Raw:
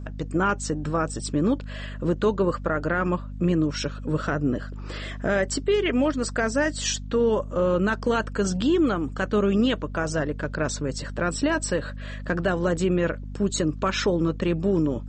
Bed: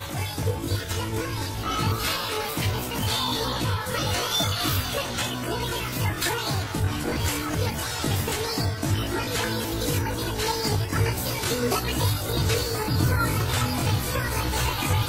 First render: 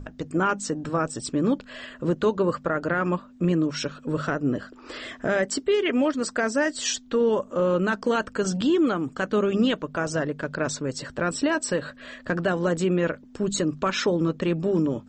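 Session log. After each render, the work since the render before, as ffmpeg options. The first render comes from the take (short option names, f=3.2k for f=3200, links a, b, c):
-af "bandreject=f=50:t=h:w=6,bandreject=f=100:t=h:w=6,bandreject=f=150:t=h:w=6,bandreject=f=200:t=h:w=6"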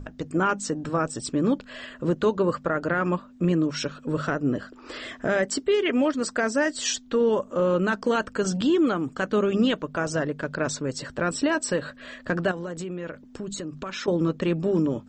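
-filter_complex "[0:a]asettb=1/sr,asplit=3[a][b][c];[a]atrim=end=12.514[d];[b]atrim=start=12.51:end=14.08,asetpts=PTS-STARTPTS,afade=t=in:d=0.004:c=qsin,afade=t=out:st=1.566:d=0.004:c=qsin,acompressor=threshold=-30dB:ratio=6:attack=3.2:release=140:knee=1:detection=peak[e];[c]atrim=start=14.076[f];[d][e]acrossfade=d=0.004:c1=hsin:c2=qsin[g];[g][f]acrossfade=d=0.004:c1=qsin:c2=hsin"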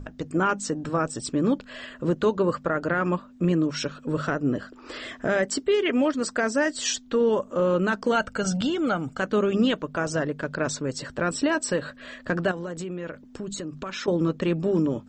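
-filter_complex "[0:a]asettb=1/sr,asplit=3[a][b][c];[a]atrim=end=8.124[d];[b]atrim=start=8.12:end=9.2,asetpts=PTS-STARTPTS,afade=t=in:d=0.004:c=qsin,afade=t=out:st=1.076:d=0.004:c=qsin,aecho=1:1:1.4:0.54,atrim=end_sample=47628[e];[c]atrim=start=9.196[f];[d][e]acrossfade=d=0.004:c1=hsin:c2=qsin[g];[g][f]acrossfade=d=0.004:c1=qsin:c2=hsin"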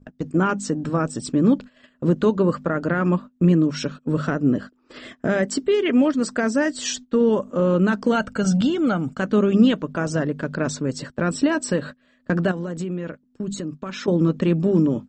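-af "agate=range=-21dB:threshold=-36dB:ratio=16:detection=peak,equalizer=f=200:w=0.92:g=8"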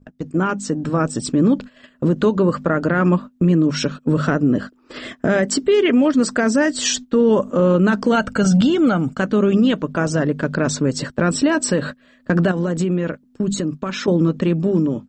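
-af "dynaudnorm=f=140:g=13:m=11.5dB,alimiter=limit=-8dB:level=0:latency=1:release=73"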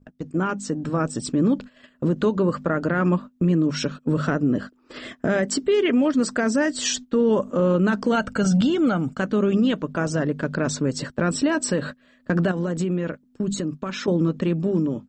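-af "volume=-4.5dB"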